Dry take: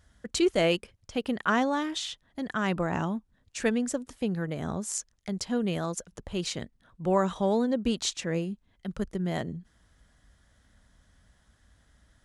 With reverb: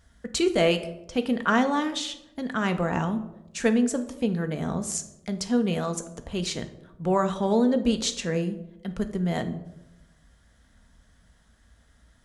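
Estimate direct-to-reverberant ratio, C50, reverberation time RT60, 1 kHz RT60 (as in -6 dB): 7.0 dB, 13.0 dB, 0.95 s, 0.80 s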